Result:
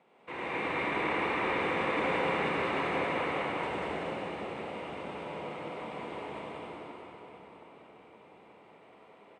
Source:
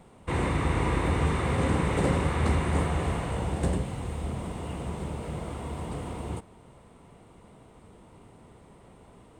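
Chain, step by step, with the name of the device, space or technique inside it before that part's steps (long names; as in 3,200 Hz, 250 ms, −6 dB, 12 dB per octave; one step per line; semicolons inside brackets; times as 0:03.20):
station announcement (band-pass filter 350–3,600 Hz; parametric band 2,400 Hz +6.5 dB 0.54 octaves; loudspeakers that aren't time-aligned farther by 33 metres −10 dB, 65 metres −3 dB; convolution reverb RT60 4.7 s, pre-delay 60 ms, DRR −6 dB)
level −9 dB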